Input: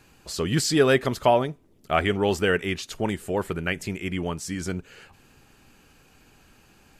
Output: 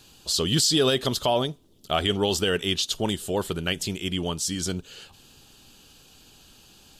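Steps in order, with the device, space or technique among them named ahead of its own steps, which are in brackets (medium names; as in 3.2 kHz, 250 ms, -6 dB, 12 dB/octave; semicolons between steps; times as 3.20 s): over-bright horn tweeter (resonant high shelf 2.7 kHz +7 dB, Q 3; peak limiter -11.5 dBFS, peak gain reduction 6.5 dB)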